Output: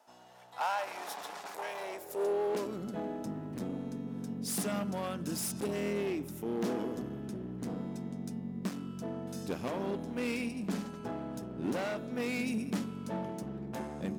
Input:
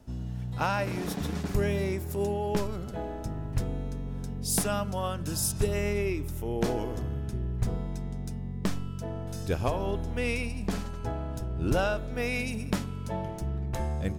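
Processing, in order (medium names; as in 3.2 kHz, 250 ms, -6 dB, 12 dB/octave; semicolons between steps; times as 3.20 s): hard clipper -29 dBFS, distortion -8 dB; high-pass sweep 800 Hz -> 220 Hz, 1.77–2.84 s; trim -3.5 dB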